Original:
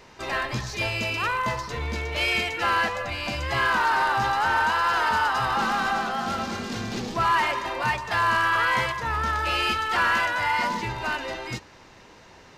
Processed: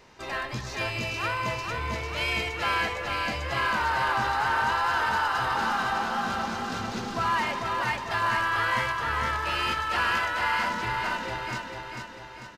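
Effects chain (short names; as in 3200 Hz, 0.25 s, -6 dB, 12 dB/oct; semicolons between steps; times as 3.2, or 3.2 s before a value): feedback echo 0.445 s, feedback 52%, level -4.5 dB; gain -4.5 dB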